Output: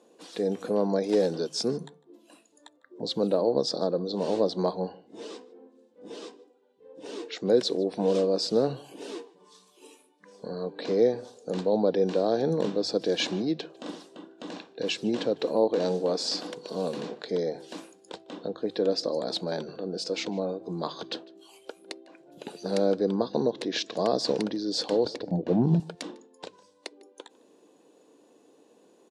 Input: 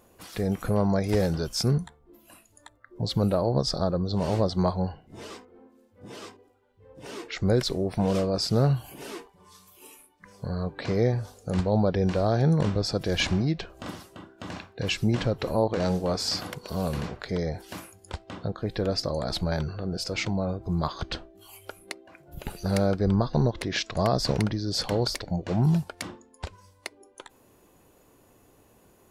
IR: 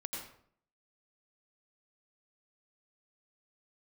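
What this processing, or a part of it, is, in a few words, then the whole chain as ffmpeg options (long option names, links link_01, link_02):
television speaker: -filter_complex "[0:a]highpass=frequency=200:width=0.5412,highpass=frequency=200:width=1.3066,equalizer=frequency=300:width_type=q:width=4:gain=6,equalizer=frequency=470:width_type=q:width=4:gain=8,equalizer=frequency=1300:width_type=q:width=4:gain=-6,equalizer=frequency=2100:width_type=q:width=4:gain=-6,equalizer=frequency=3800:width_type=q:width=4:gain=5,lowpass=frequency=8800:width=0.5412,lowpass=frequency=8800:width=1.3066,bandreject=frequency=50:width_type=h:width=6,bandreject=frequency=100:width_type=h:width=6,bandreject=frequency=150:width_type=h:width=6,asettb=1/sr,asplit=3[link_01][link_02][link_03];[link_01]atrim=end=25.054[link_04];[link_02]atrim=start=25.05:end=25.8,asetpts=PTS-STARTPTS,afade=type=in:duration=0.004:curve=qsin,afade=type=out:start_time=0.746:duration=0.004:curve=qsin,aemphasis=mode=reproduction:type=riaa[link_05];[link_03]atrim=start=25.796[link_06];[link_04][link_05]acrossfade=duration=0.004:curve1=hsin:curve2=qsin[link_07];[link_07][link_06]acrossfade=duration=0.004:curve1=qsin:curve2=hsin,asplit=2[link_08][link_09];[link_09]adelay=151.6,volume=-23dB,highshelf=frequency=4000:gain=-3.41[link_10];[link_08][link_10]amix=inputs=2:normalize=0,volume=-2.5dB"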